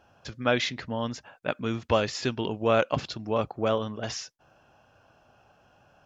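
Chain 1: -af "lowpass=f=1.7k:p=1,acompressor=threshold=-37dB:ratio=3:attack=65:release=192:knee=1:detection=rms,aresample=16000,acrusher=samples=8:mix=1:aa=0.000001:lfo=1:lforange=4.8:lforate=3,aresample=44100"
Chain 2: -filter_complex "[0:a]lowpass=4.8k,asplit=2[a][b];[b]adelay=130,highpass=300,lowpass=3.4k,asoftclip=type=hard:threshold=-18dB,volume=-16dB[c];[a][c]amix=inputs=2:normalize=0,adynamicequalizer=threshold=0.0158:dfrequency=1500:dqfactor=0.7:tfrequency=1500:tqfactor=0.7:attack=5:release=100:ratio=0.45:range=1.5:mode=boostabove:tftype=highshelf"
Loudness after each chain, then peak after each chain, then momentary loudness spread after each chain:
-37.5, -28.0 LUFS; -17.0, -7.5 dBFS; 6, 11 LU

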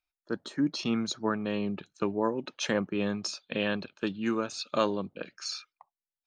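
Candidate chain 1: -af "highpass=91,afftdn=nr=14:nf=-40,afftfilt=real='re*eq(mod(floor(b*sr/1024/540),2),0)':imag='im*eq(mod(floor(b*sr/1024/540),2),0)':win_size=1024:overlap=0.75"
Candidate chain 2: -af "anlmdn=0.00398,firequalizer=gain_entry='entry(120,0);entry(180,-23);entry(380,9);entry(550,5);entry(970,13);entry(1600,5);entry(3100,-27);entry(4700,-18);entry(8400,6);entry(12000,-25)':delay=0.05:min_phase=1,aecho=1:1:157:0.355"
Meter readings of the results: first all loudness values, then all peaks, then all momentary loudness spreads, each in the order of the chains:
-33.0, -27.0 LUFS; -15.0, -5.0 dBFS; 9, 12 LU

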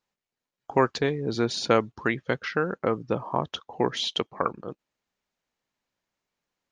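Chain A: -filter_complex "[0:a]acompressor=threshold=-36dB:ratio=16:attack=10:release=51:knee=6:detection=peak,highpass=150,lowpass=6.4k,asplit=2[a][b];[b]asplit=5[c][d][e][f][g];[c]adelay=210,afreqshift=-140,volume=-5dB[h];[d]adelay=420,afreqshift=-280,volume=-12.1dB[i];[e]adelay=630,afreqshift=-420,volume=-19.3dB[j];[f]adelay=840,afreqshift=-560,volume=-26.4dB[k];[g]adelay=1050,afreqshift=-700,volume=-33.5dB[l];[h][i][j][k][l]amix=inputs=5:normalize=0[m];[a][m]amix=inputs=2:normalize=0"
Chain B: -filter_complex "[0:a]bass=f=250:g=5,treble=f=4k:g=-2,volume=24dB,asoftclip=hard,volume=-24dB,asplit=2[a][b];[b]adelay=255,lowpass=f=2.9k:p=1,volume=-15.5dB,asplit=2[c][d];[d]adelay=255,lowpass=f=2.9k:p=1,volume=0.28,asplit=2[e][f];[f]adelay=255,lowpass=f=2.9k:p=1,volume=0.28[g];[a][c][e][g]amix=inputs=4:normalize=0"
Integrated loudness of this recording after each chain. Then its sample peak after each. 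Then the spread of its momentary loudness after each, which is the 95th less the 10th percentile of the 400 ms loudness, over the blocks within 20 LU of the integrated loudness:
-38.0, -31.0 LUFS; -17.5, -22.0 dBFS; 9, 7 LU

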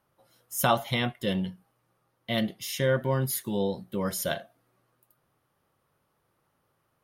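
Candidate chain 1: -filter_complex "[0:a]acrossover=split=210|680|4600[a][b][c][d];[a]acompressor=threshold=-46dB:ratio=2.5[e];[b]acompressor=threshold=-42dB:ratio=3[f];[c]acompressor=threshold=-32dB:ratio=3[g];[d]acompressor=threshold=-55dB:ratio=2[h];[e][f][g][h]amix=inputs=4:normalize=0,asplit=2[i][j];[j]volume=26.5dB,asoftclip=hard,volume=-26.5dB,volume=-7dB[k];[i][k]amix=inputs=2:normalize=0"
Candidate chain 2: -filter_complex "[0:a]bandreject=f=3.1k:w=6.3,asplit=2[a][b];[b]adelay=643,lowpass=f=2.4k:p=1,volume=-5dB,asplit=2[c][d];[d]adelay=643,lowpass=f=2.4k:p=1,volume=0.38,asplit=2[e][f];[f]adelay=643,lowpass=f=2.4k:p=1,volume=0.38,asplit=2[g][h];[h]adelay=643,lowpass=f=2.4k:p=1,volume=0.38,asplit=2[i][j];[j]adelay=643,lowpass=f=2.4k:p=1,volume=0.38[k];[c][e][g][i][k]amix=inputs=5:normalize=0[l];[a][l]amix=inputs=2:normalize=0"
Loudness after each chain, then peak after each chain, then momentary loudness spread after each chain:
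-33.0, -29.0 LUFS; -15.5, -11.0 dBFS; 7, 17 LU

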